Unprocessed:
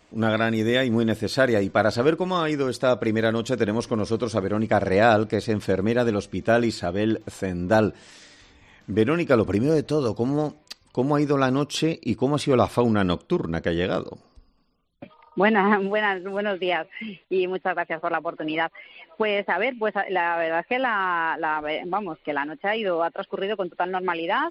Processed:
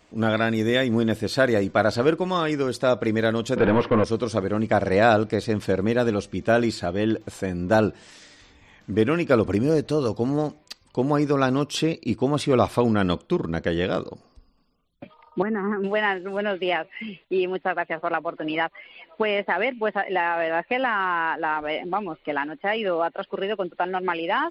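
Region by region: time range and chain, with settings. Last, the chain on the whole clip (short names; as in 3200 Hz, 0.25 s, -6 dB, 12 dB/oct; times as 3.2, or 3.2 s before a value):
3.56–4.04 expander -35 dBFS + overdrive pedal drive 27 dB, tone 2600 Hz, clips at -9 dBFS + air absorption 430 m
15.42–15.84 inverse Chebyshev low-pass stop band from 5100 Hz, stop band 60 dB + compressor 3:1, threshold -21 dBFS + band shelf 750 Hz -9.5 dB 1.1 oct
whole clip: dry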